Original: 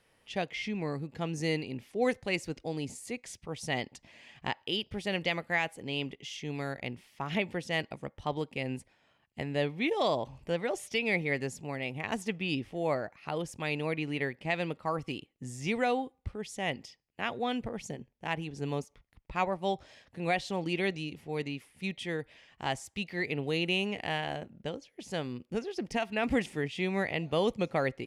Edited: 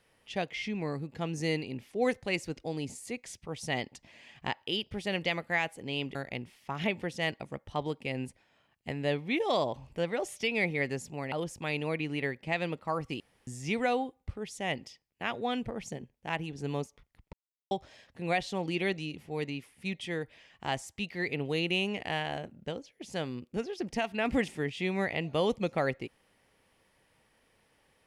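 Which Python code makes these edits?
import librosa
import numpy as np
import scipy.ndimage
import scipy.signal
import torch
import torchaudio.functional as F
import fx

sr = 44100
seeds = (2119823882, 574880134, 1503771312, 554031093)

y = fx.edit(x, sr, fx.cut(start_s=6.15, length_s=0.51),
    fx.cut(start_s=11.83, length_s=1.47),
    fx.room_tone_fill(start_s=15.18, length_s=0.27),
    fx.silence(start_s=19.31, length_s=0.38), tone=tone)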